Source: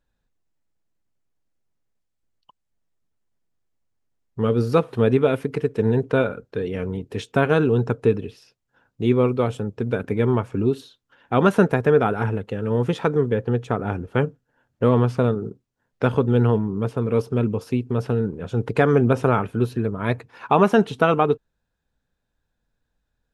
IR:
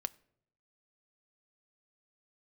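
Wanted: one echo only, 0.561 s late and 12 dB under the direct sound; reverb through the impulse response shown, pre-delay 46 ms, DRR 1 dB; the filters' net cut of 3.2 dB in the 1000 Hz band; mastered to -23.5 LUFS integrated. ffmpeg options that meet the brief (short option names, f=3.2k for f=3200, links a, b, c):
-filter_complex "[0:a]equalizer=f=1k:t=o:g=-4.5,aecho=1:1:561:0.251,asplit=2[a][b];[1:a]atrim=start_sample=2205,adelay=46[c];[b][c]afir=irnorm=-1:irlink=0,volume=0dB[d];[a][d]amix=inputs=2:normalize=0,volume=-3.5dB"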